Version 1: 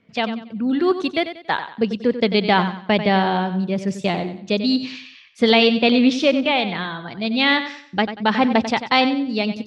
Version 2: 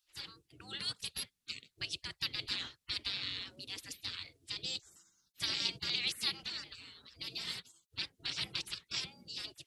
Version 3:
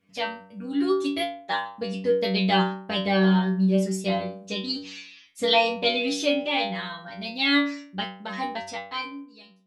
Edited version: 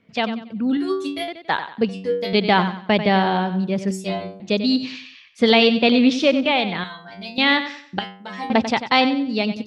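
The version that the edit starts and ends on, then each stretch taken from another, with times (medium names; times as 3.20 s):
1
0.77–1.28 s: from 3
1.89–2.33 s: from 3
3.91–4.40 s: from 3
6.84–7.38 s: from 3
7.99–8.50 s: from 3
not used: 2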